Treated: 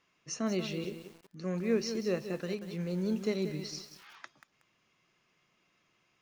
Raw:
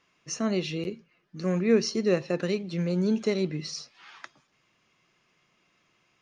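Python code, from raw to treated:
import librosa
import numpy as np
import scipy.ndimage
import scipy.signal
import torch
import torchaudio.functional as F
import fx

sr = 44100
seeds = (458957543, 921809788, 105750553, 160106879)

y = fx.rider(x, sr, range_db=4, speed_s=2.0)
y = fx.echo_crushed(y, sr, ms=185, feedback_pct=35, bits=7, wet_db=-9.5)
y = y * 10.0 ** (-7.5 / 20.0)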